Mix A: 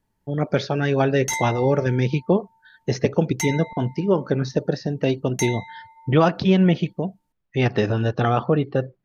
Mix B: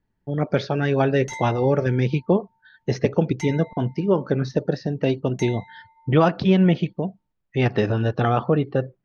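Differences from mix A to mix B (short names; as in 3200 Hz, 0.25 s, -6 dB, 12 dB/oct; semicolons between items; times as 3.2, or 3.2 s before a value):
background -6.5 dB; master: add air absorption 86 m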